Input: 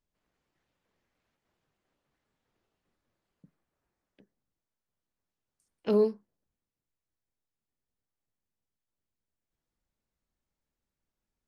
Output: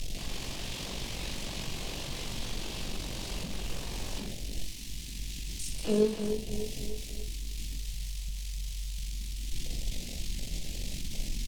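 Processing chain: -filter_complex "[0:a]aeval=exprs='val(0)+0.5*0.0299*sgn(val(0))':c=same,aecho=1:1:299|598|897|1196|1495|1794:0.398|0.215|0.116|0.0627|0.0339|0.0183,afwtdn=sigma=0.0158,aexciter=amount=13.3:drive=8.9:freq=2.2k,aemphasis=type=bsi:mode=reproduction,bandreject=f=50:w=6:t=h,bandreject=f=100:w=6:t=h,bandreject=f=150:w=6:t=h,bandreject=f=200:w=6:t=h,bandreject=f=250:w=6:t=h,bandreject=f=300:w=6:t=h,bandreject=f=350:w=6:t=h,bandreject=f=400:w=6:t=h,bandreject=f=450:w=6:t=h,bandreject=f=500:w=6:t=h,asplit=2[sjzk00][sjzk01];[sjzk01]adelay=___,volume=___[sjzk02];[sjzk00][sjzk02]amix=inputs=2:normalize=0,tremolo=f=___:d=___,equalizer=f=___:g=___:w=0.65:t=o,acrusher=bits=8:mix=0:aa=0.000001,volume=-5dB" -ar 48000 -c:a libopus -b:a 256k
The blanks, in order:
47, -6.5dB, 47, 0.4, 77, -6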